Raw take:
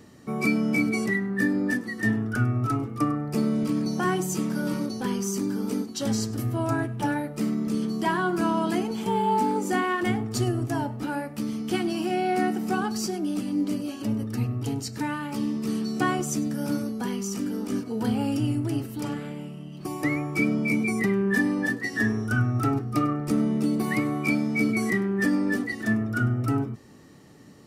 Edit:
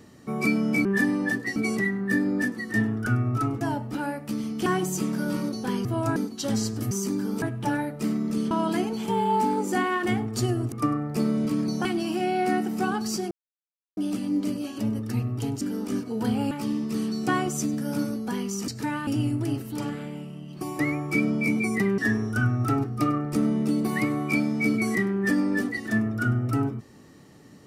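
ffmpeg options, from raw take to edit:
-filter_complex "[0:a]asplit=18[s0][s1][s2][s3][s4][s5][s6][s7][s8][s9][s10][s11][s12][s13][s14][s15][s16][s17];[s0]atrim=end=0.852[s18];[s1]atrim=start=21.218:end=21.932[s19];[s2]atrim=start=0.848:end=2.902[s20];[s3]atrim=start=10.698:end=11.752[s21];[s4]atrim=start=4.028:end=5.222[s22];[s5]atrim=start=6.478:end=6.792[s23];[s6]atrim=start=5.728:end=6.482[s24];[s7]atrim=start=5.218:end=5.732[s25];[s8]atrim=start=6.788:end=7.882[s26];[s9]atrim=start=8.488:end=10.702[s27];[s10]atrim=start=2.898:end=4.032[s28];[s11]atrim=start=11.748:end=13.21,asetpts=PTS-STARTPTS,afade=t=out:st=1.458:d=0.004:c=hsin,apad=pad_dur=0.66[s29];[s12]atrim=start=13.21:end=14.852,asetpts=PTS-STARTPTS,afade=t=in:d=0.004:c=hsin[s30];[s13]atrim=start=17.408:end=18.312[s31];[s14]atrim=start=15.238:end=17.412[s32];[s15]atrim=start=14.848:end=15.242[s33];[s16]atrim=start=18.308:end=21.222[s34];[s17]atrim=start=21.928[s35];[s18][s19]acrossfade=d=0.004:c1=hsin:c2=hsin[s36];[s36][s20]acrossfade=d=0.004:c1=hsin:c2=hsin[s37];[s37][s21]acrossfade=d=0.004:c1=hsin:c2=hsin[s38];[s38][s22]acrossfade=d=0.004:c1=hsin:c2=hsin[s39];[s39][s23]acrossfade=d=0.004:c1=hsin:c2=hsin[s40];[s40][s24]acrossfade=d=0.004:c1=hsin:c2=hsin[s41];[s41][s25]acrossfade=d=0.004:c1=hsin:c2=hsin[s42];[s42][s26]acrossfade=d=0.004:c1=hsin:c2=hsin[s43];[s43][s27]acrossfade=d=0.004:c1=hsin:c2=hsin[s44];[s44][s28]acrossfade=d=0.004:c1=hsin:c2=hsin[s45];[s29][s30]concat=n=2:v=0:a=1[s46];[s45][s46]acrossfade=d=0.004:c1=hsin:c2=hsin[s47];[s47][s31]acrossfade=d=0.004:c1=hsin:c2=hsin[s48];[s48][s32]acrossfade=d=0.004:c1=hsin:c2=hsin[s49];[s49][s33]acrossfade=d=0.004:c1=hsin:c2=hsin[s50];[s50][s34]acrossfade=d=0.004:c1=hsin:c2=hsin[s51];[s51][s35]acrossfade=d=0.004:c1=hsin:c2=hsin"

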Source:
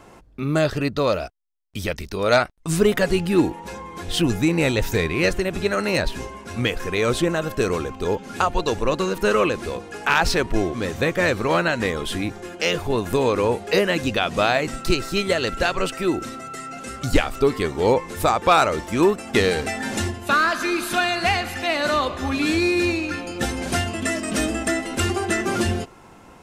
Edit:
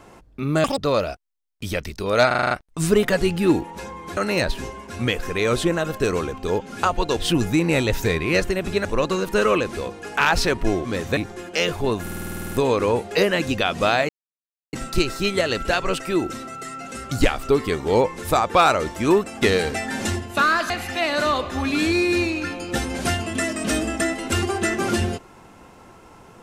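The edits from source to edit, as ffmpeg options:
-filter_complex "[0:a]asplit=25[s0][s1][s2][s3][s4][s5][s6][s7][s8][s9][s10][s11][s12][s13][s14][s15][s16][s17][s18][s19][s20][s21][s22][s23][s24];[s0]atrim=end=0.644[s25];[s1]atrim=start=0.64:end=0.91,asetpts=PTS-STARTPTS,asetrate=85554,aresample=44100[s26];[s2]atrim=start=0.906:end=2.442[s27];[s3]atrim=start=2.398:end=2.442[s28];[s4]atrim=start=2.398:end=2.442[s29];[s5]atrim=start=2.398:end=2.442[s30];[s6]atrim=start=2.398:end=2.442[s31];[s7]atrim=start=2.398:end=2.442[s32];[s8]atrim=start=2.398:end=4.062[s33];[s9]atrim=start=5.738:end=8.742[s34];[s10]atrim=start=4.058:end=5.742[s35];[s11]atrim=start=8.738:end=11.062[s36];[s12]atrim=start=12.228:end=13.132[s37];[s13]atrim=start=13.078:end=13.132[s38];[s14]atrim=start=13.078:end=13.132[s39];[s15]atrim=start=13.078:end=13.132[s40];[s16]atrim=start=13.078:end=13.132[s41];[s17]atrim=start=13.078:end=13.132[s42];[s18]atrim=start=13.078:end=13.132[s43];[s19]atrim=start=13.078:end=13.132[s44];[s20]atrim=start=13.078:end=13.132[s45];[s21]atrim=start=13.078:end=13.132[s46];[s22]atrim=start=13.078:end=14.65,asetpts=PTS-STARTPTS,afade=t=out:st=1.568:d=0.004:c=hsin,apad=pad_dur=0.64[s47];[s23]atrim=start=14.65:end=20.622,asetpts=PTS-STARTPTS,afade=t=in:d=0.004:c=hsin[s48];[s24]atrim=start=21.368[s49];[s25][s26]acrossfade=d=0.004:c1=hsin:c2=hsin[s50];[s50][s27]acrossfade=d=0.004:c1=hsin:c2=hsin[s51];[s51][s28]acrossfade=d=0.004:c1=hsin:c2=hsin[s52];[s52][s29]acrossfade=d=0.004:c1=hsin:c2=hsin[s53];[s53][s30]acrossfade=d=0.004:c1=hsin:c2=hsin[s54];[s54][s31]acrossfade=d=0.004:c1=hsin:c2=hsin[s55];[s55][s32]acrossfade=d=0.004:c1=hsin:c2=hsin[s56];[s56][s33]acrossfade=d=0.004:c1=hsin:c2=hsin[s57];[s57][s34]acrossfade=d=0.004:c1=hsin:c2=hsin[s58];[s58][s35]acrossfade=d=0.004:c1=hsin:c2=hsin[s59];[s59][s36]acrossfade=d=0.004:c1=hsin:c2=hsin[s60];[s60][s37]acrossfade=d=0.004:c1=hsin:c2=hsin[s61];[s61][s38]acrossfade=d=0.004:c1=hsin:c2=hsin[s62];[s62][s39]acrossfade=d=0.004:c1=hsin:c2=hsin[s63];[s63][s40]acrossfade=d=0.004:c1=hsin:c2=hsin[s64];[s64][s41]acrossfade=d=0.004:c1=hsin:c2=hsin[s65];[s65][s42]acrossfade=d=0.004:c1=hsin:c2=hsin[s66];[s66][s43]acrossfade=d=0.004:c1=hsin:c2=hsin[s67];[s67][s44]acrossfade=d=0.004:c1=hsin:c2=hsin[s68];[s68][s45]acrossfade=d=0.004:c1=hsin:c2=hsin[s69];[s69][s46]acrossfade=d=0.004:c1=hsin:c2=hsin[s70];[s47][s48]concat=n=2:v=0:a=1[s71];[s70][s71]acrossfade=d=0.004:c1=hsin:c2=hsin[s72];[s72][s49]acrossfade=d=0.004:c1=hsin:c2=hsin"

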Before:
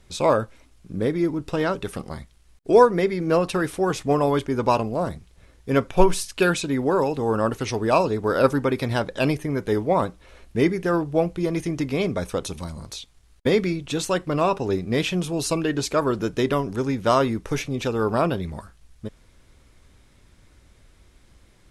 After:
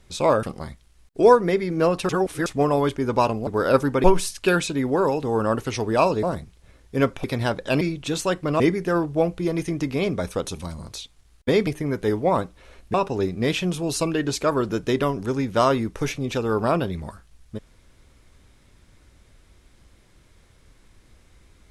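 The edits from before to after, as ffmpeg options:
-filter_complex "[0:a]asplit=12[s0][s1][s2][s3][s4][s5][s6][s7][s8][s9][s10][s11];[s0]atrim=end=0.432[s12];[s1]atrim=start=1.928:end=3.592[s13];[s2]atrim=start=3.588:end=3.962,asetpts=PTS-STARTPTS,areverse[s14];[s3]atrim=start=3.958:end=4.972[s15];[s4]atrim=start=8.168:end=8.742[s16];[s5]atrim=start=5.978:end=8.172[s17];[s6]atrim=start=4.968:end=5.982[s18];[s7]atrim=start=8.738:end=9.312[s19];[s8]atrim=start=13.648:end=14.442[s20];[s9]atrim=start=10.578:end=13.652[s21];[s10]atrim=start=9.308:end=10.582[s22];[s11]atrim=start=14.438[s23];[s12][s13]acrossfade=d=0.004:c1=hsin:c2=hsin[s24];[s24][s14]acrossfade=d=0.004:c1=hsin:c2=hsin[s25];[s25][s15]acrossfade=d=0.004:c1=hsin:c2=hsin[s26];[s26][s16]acrossfade=d=0.004:c1=hsin:c2=hsin[s27];[s27][s17]acrossfade=d=0.004:c1=hsin:c2=hsin[s28];[s28][s18]acrossfade=d=0.004:c1=hsin:c2=hsin[s29];[s29][s19]acrossfade=d=0.004:c1=hsin:c2=hsin[s30];[s30][s20]acrossfade=d=0.004:c1=hsin:c2=hsin[s31];[s31][s21]acrossfade=d=0.004:c1=hsin:c2=hsin[s32];[s32][s22]acrossfade=d=0.004:c1=hsin:c2=hsin[s33];[s33][s23]acrossfade=d=0.004:c1=hsin:c2=hsin"

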